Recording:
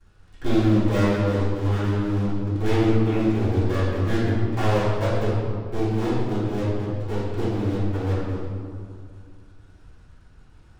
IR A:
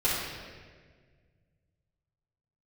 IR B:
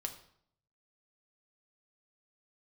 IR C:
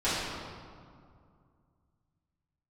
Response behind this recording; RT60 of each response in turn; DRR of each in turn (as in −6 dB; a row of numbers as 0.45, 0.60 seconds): C; 1.6, 0.65, 2.2 seconds; −10.0, 4.5, −14.0 decibels